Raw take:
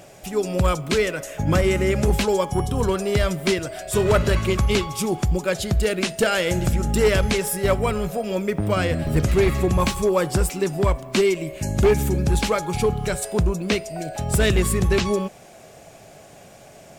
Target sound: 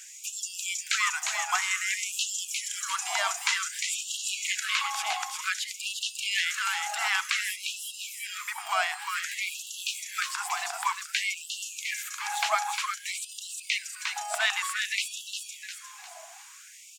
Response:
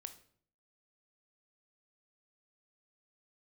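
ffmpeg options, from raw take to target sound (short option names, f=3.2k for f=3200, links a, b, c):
-filter_complex "[0:a]asplit=5[a][b][c][d][e];[b]adelay=353,afreqshift=-35,volume=-5.5dB[f];[c]adelay=706,afreqshift=-70,volume=-14.4dB[g];[d]adelay=1059,afreqshift=-105,volume=-23.2dB[h];[e]adelay=1412,afreqshift=-140,volume=-32.1dB[i];[a][f][g][h][i]amix=inputs=5:normalize=0,acrossover=split=4200[j][k];[k]acompressor=threshold=-39dB:ratio=4:attack=1:release=60[l];[j][l]amix=inputs=2:normalize=0,asetnsamples=n=441:p=0,asendcmd='4.6 equalizer g 6',equalizer=f=6.9k:w=2.1:g=13,afftfilt=real='re*gte(b*sr/1024,640*pow(2700/640,0.5+0.5*sin(2*PI*0.54*pts/sr)))':imag='im*gte(b*sr/1024,640*pow(2700/640,0.5+0.5*sin(2*PI*0.54*pts/sr)))':win_size=1024:overlap=0.75"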